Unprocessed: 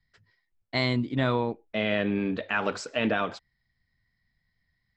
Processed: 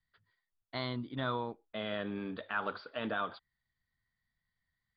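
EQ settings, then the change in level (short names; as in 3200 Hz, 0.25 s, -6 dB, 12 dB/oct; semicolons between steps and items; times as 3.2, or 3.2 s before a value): dynamic EQ 2300 Hz, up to -4 dB, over -40 dBFS, Q 1.7; rippled Chebyshev low-pass 4800 Hz, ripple 9 dB; -3.0 dB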